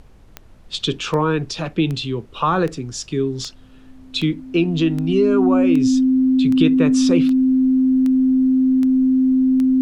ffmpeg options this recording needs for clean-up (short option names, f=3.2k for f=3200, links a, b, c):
-af "adeclick=t=4,bandreject=f=260:w=30,agate=range=-21dB:threshold=-35dB"